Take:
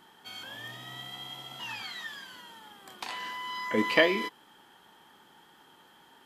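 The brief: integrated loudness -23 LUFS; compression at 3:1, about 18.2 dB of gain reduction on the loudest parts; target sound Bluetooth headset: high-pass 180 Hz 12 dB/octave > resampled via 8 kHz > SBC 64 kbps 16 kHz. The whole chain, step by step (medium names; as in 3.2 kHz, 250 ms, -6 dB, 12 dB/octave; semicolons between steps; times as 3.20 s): compression 3:1, threshold -42 dBFS; high-pass 180 Hz 12 dB/octave; resampled via 8 kHz; trim +20 dB; SBC 64 kbps 16 kHz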